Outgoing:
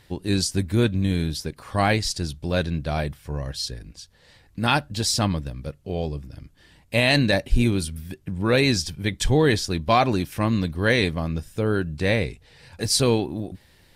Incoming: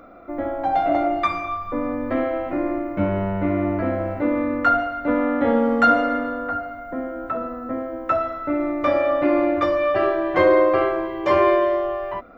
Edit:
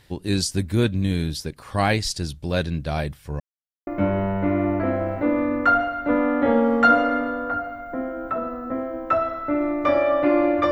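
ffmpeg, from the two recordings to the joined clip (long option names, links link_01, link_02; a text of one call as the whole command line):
ffmpeg -i cue0.wav -i cue1.wav -filter_complex "[0:a]apad=whole_dur=10.71,atrim=end=10.71,asplit=2[link_01][link_02];[link_01]atrim=end=3.4,asetpts=PTS-STARTPTS,afade=type=out:start_time=3.396:duration=0.004:curve=hsin[link_03];[link_02]atrim=start=3.4:end=3.87,asetpts=PTS-STARTPTS,volume=0[link_04];[1:a]atrim=start=2.86:end=9.7,asetpts=PTS-STARTPTS,afade=type=in:duration=0.004:curve=hsin[link_05];[link_03][link_04][link_05]concat=n=3:v=0:a=1" out.wav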